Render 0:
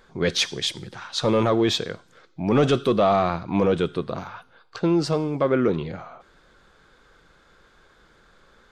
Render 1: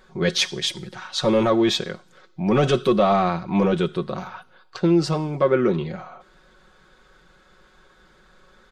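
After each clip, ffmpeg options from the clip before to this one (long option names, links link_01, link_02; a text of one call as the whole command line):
ffmpeg -i in.wav -af "aecho=1:1:5.4:0.59" out.wav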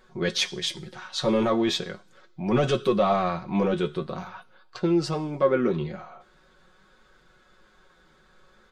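ffmpeg -i in.wav -af "flanger=delay=8.2:depth=6:regen=52:speed=0.41:shape=sinusoidal" out.wav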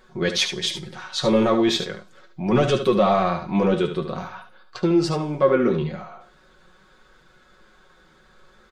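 ffmpeg -i in.wav -af "aecho=1:1:73:0.355,volume=3.5dB" out.wav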